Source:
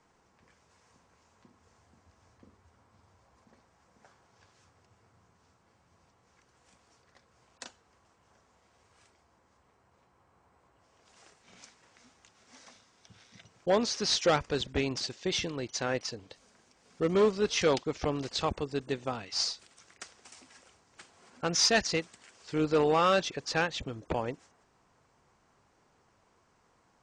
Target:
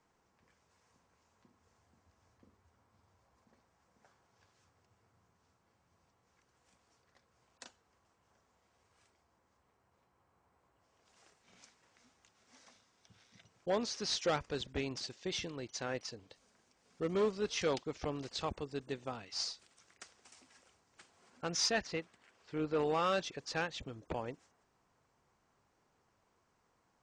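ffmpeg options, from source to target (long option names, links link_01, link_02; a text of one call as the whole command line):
ffmpeg -i in.wav -filter_complex "[0:a]asettb=1/sr,asplit=3[link_01][link_02][link_03];[link_01]atrim=end=21.714[link_04];[link_02]atrim=start=21.71:end=22.79,asetpts=PTS-STARTPTS,afade=type=in:duration=0.004:curve=qsin,afade=type=out:start_time=1.076:duration=0.004:curve=qsin,bass=frequency=250:gain=-1,treble=frequency=4000:gain=-11[link_05];[link_03]atrim=start=22.786[link_06];[link_04][link_05]acrossfade=duration=0.004:curve1=hsin:curve2=qsin[link_07];[link_07][link_06]acrossfade=duration=0.004:curve1=qsin:curve2=hsin,volume=-7.5dB" out.wav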